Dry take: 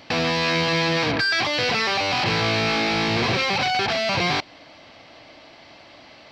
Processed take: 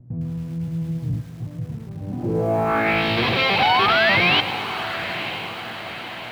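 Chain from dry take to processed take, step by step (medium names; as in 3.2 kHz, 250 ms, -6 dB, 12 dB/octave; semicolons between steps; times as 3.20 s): treble shelf 3.6 kHz -9.5 dB; peak limiter -19 dBFS, peak gain reduction 6.5 dB; mains buzz 120 Hz, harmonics 16, -51 dBFS -2 dB/octave; low-pass sweep 130 Hz -> 3.4 kHz, 1.96–3.06 s; painted sound rise, 3.59–4.41 s, 750–3200 Hz -25 dBFS; on a send: echo that smears into a reverb 965 ms, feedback 52%, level -11 dB; on the sum: bit-crushed delay 107 ms, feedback 80%, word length 7-bit, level -15 dB; trim +4.5 dB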